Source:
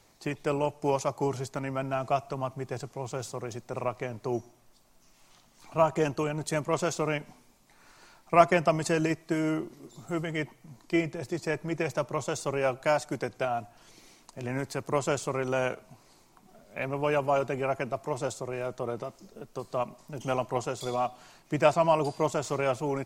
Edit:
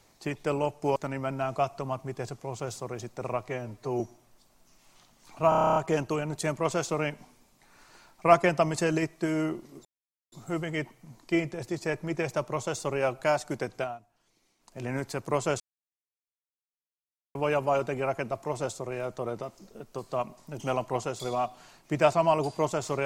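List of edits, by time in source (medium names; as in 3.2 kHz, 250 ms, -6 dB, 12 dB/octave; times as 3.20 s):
0.96–1.48 s: delete
4.01–4.35 s: stretch 1.5×
5.84 s: stutter 0.03 s, 10 plays
9.93 s: insert silence 0.47 s
13.39–14.40 s: dip -16 dB, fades 0.20 s
15.21–16.96 s: mute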